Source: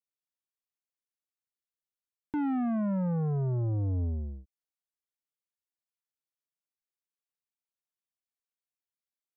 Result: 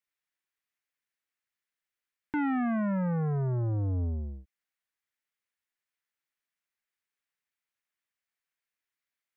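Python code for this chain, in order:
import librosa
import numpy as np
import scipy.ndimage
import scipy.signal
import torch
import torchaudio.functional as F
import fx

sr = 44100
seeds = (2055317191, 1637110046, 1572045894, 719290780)

y = fx.peak_eq(x, sr, hz=1900.0, db=12.5, octaves=1.3)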